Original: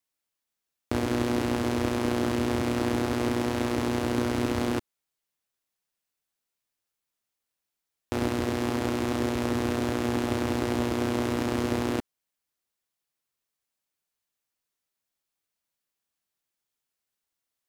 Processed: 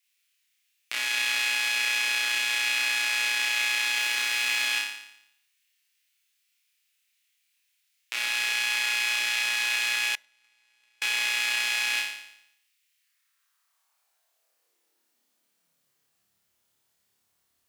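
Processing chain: in parallel at +2 dB: peak limiter -22 dBFS, peak gain reduction 10 dB; on the sum: flutter echo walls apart 4.9 m, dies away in 0.77 s; 3.96–4.66 s: added noise pink -41 dBFS; 10.15–11.02 s: gate -14 dBFS, range -40 dB; high-pass sweep 2.4 kHz -> 82 Hz, 12.89–16.45 s; on a send at -22 dB: reverberation RT60 0.45 s, pre-delay 4 ms

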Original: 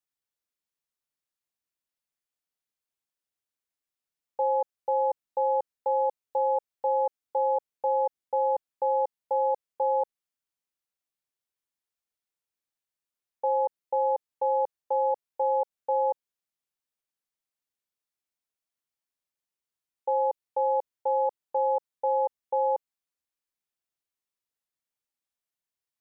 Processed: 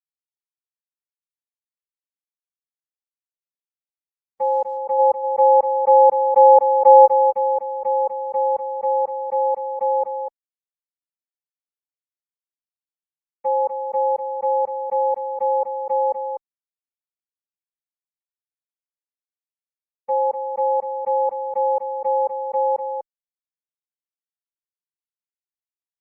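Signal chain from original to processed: gate -26 dBFS, range -58 dB; 4.98–7.05 s: peaking EQ 720 Hz +5 dB -> +12.5 dB 2.7 oct; delay 247 ms -7.5 dB; trim +5.5 dB; Opus 20 kbps 48 kHz

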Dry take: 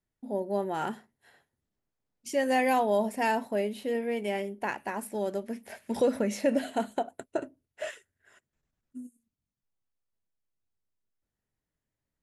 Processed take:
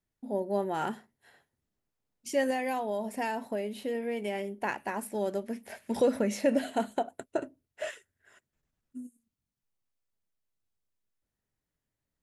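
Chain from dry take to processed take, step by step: 2.50–4.62 s: compression, threshold -29 dBFS, peak gain reduction 8 dB

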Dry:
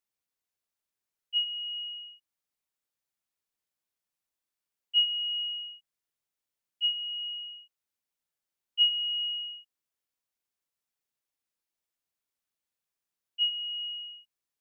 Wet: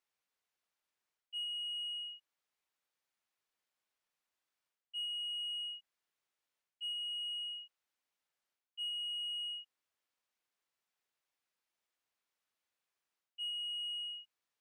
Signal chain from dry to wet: reverse; compression 6:1, threshold -37 dBFS, peak gain reduction 16.5 dB; reverse; overdrive pedal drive 10 dB, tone 2.7 kHz, clips at -33.5 dBFS

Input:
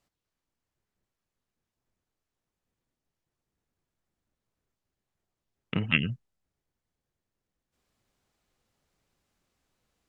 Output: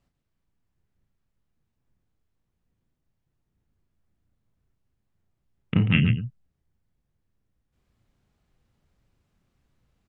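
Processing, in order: tone controls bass +11 dB, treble -6 dB; on a send: loudspeakers at several distances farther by 12 m -7 dB, 48 m -9 dB

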